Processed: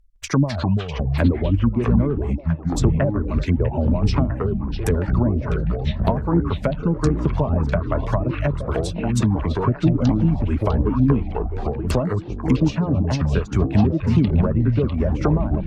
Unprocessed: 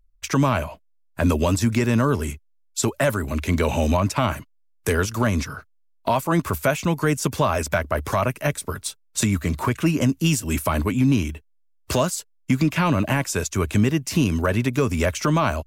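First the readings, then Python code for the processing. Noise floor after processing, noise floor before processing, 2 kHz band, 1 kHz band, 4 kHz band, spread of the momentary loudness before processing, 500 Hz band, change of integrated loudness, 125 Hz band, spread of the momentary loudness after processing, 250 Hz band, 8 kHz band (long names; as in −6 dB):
−33 dBFS, −61 dBFS, −7.5 dB, −4.0 dB, −5.5 dB, 9 LU, 0.0 dB, +1.5 dB, +4.5 dB, 5 LU, +2.5 dB, −11.5 dB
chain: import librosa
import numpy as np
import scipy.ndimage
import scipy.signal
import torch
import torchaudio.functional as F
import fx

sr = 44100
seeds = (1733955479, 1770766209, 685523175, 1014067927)

p1 = fx.env_lowpass_down(x, sr, base_hz=530.0, full_db=-16.5)
p2 = fx.dereverb_blind(p1, sr, rt60_s=1.1)
p3 = fx.low_shelf(p2, sr, hz=240.0, db=4.5)
p4 = fx.echo_pitch(p3, sr, ms=160, semitones=-6, count=3, db_per_echo=-3.0)
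y = p4 + fx.echo_stepped(p4, sr, ms=650, hz=3000.0, octaves=-1.4, feedback_pct=70, wet_db=-3.5, dry=0)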